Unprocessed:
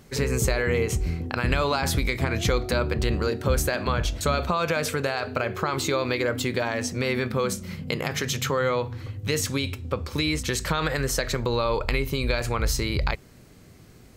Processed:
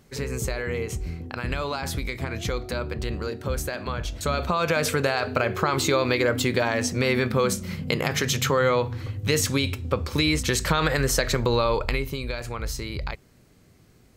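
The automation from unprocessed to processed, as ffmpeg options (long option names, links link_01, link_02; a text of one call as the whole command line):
ffmpeg -i in.wav -af "volume=3dB,afade=type=in:start_time=4.05:duration=0.85:silence=0.398107,afade=type=out:start_time=11.54:duration=0.72:silence=0.354813" out.wav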